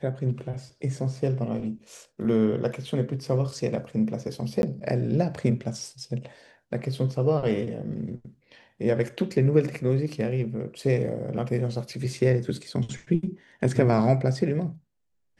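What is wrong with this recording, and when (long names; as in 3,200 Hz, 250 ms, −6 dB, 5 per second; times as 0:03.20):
0:04.62–0:04.63: drop-out 11 ms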